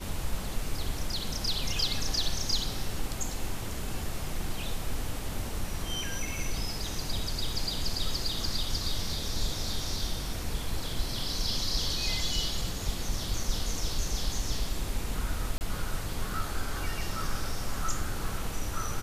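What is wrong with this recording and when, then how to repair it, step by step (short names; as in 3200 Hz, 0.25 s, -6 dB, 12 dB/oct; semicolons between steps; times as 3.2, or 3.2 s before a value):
15.58–15.61 gap 29 ms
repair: interpolate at 15.58, 29 ms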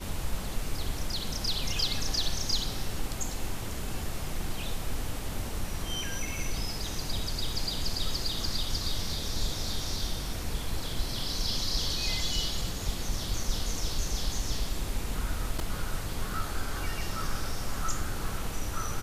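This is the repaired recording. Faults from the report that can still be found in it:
none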